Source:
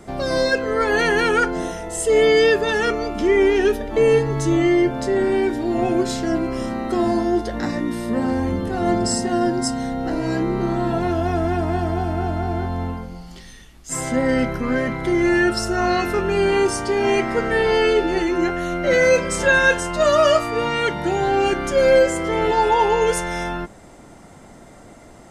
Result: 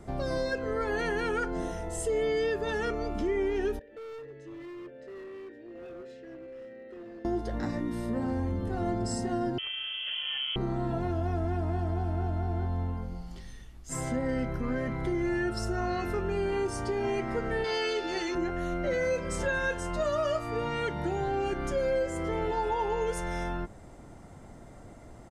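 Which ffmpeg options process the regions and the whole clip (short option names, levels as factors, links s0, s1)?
-filter_complex "[0:a]asettb=1/sr,asplit=3[s0][s1][s2];[s0]atrim=end=3.794[s3];[s1]atrim=start=3.79:end=7.25,asetpts=PTS-STARTPTS,afade=t=in:d=0.004:c=qsin,afade=t=out:st=3.456:d=0.004:c=qsin,asplit=3[s4][s5][s6];[s4]bandpass=f=530:t=q:w=8,volume=1[s7];[s5]bandpass=f=1840:t=q:w=8,volume=0.501[s8];[s6]bandpass=f=2480:t=q:w=8,volume=0.355[s9];[s7][s8][s9]amix=inputs=3:normalize=0,equalizer=f=670:t=o:w=0.7:g=-11,volume=50.1,asoftclip=hard,volume=0.02[s10];[s2]atrim=start=7.246[s11];[s3][s10]acrossfade=d=0.004:c1=hsin:c2=qsin[s12];[s12][s11]acrossfade=d=0.004:c1=qsin:c2=hsin,asettb=1/sr,asplit=3[s13][s14][s15];[s13]atrim=end=9.584[s16];[s14]atrim=start=9.58:end=10.56,asetpts=PTS-STARTPTS,afade=t=in:d=0.004:c=qsin,afade=t=out:st=0.976:d=0.004:c=qsin,adynamicsmooth=sensitivity=3:basefreq=830,lowpass=f=2900:t=q:w=0.5098,lowpass=f=2900:t=q:w=0.6013,lowpass=f=2900:t=q:w=0.9,lowpass=f=2900:t=q:w=2.563,afreqshift=-3400[s17];[s15]atrim=start=10.556[s18];[s16][s17]acrossfade=d=0.004:c1=hsin:c2=qsin[s19];[s19][s18]acrossfade=d=0.004:c1=qsin:c2=hsin,asettb=1/sr,asplit=3[s20][s21][s22];[s20]atrim=end=17.644[s23];[s21]atrim=start=17.64:end=18.35,asetpts=PTS-STARTPTS,afade=t=in:d=0.004:c=qsin,afade=t=out:st=0.706:d=0.004:c=qsin,lowpass=f=5100:t=q:w=1.5,aemphasis=mode=production:type=riaa[s24];[s22]atrim=start=18.346[s25];[s23][s24]acrossfade=d=0.004:c1=hsin:c2=qsin[s26];[s26][s25]acrossfade=d=0.004:c1=qsin:c2=hsin,firequalizer=gain_entry='entry(110,0);entry(180,-6);entry(2600,-11)':delay=0.05:min_phase=1,acompressor=threshold=0.0355:ratio=2.5"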